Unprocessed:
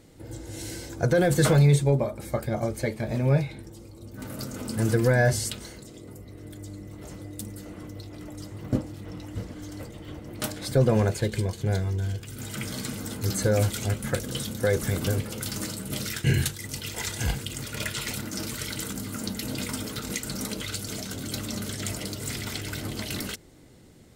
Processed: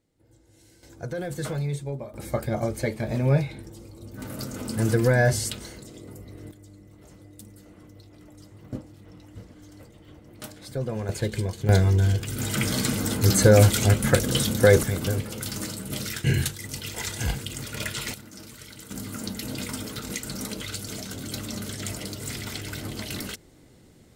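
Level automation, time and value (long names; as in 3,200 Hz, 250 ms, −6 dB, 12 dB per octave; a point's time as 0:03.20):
−20 dB
from 0:00.83 −10.5 dB
from 0:02.14 +1 dB
from 0:06.51 −9 dB
from 0:11.09 −0.5 dB
from 0:11.69 +8 dB
from 0:14.83 0 dB
from 0:18.14 −11 dB
from 0:18.91 −1 dB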